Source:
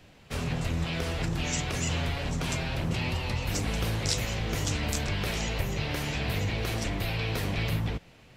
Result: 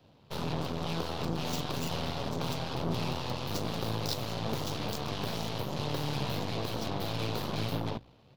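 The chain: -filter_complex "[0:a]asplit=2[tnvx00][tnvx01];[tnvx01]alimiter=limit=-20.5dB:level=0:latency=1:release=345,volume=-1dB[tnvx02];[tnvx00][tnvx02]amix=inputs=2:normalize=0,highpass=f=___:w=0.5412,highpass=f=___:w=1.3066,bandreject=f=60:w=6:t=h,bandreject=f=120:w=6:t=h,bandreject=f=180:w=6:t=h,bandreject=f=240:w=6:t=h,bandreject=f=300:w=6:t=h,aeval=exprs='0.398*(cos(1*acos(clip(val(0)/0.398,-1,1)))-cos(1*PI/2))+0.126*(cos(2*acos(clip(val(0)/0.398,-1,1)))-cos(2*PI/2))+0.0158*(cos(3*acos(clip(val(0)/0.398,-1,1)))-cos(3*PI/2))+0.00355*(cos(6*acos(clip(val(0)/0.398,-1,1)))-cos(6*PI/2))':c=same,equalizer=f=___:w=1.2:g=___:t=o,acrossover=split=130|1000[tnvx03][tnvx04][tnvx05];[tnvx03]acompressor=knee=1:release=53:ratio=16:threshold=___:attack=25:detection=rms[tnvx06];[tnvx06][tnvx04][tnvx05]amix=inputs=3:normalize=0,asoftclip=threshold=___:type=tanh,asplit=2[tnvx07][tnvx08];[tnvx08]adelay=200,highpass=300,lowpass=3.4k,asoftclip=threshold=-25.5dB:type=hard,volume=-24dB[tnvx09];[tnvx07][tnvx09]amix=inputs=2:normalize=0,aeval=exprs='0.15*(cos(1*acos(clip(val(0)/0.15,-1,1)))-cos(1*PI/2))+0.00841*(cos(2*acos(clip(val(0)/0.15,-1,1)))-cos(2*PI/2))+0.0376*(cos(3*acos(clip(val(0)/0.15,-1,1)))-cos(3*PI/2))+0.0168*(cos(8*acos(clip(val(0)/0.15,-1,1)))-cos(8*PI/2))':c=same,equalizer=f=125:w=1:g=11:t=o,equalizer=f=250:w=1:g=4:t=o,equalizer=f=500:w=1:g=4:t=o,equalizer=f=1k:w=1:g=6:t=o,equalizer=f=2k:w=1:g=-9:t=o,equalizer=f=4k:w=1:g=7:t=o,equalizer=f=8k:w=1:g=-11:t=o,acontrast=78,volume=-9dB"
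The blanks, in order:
58, 58, 130, -3.5, -45dB, -16.5dB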